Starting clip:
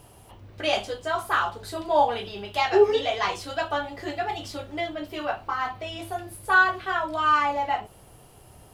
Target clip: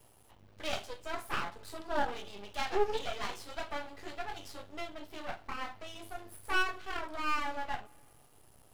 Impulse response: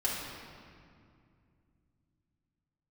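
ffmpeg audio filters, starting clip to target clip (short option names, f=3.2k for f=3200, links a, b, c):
-filter_complex "[0:a]bass=f=250:g=-2,treble=f=4k:g=3,aeval=exprs='max(val(0),0)':c=same,asplit=2[a][b];[1:a]atrim=start_sample=2205[c];[b][c]afir=irnorm=-1:irlink=0,volume=-28.5dB[d];[a][d]amix=inputs=2:normalize=0,volume=-8dB"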